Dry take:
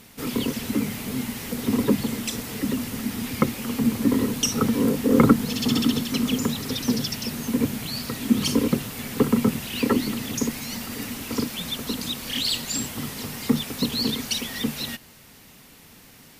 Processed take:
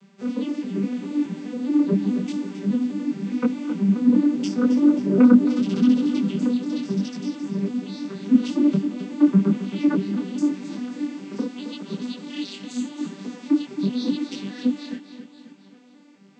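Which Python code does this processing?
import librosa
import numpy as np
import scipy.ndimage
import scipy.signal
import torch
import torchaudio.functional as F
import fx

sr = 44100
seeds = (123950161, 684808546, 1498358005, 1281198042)

y = fx.vocoder_arp(x, sr, chord='major triad', root=55, every_ms=207)
y = fx.echo_feedback(y, sr, ms=267, feedback_pct=51, wet_db=-11.0)
y = fx.detune_double(y, sr, cents=29)
y = y * 10.0 ** (6.0 / 20.0)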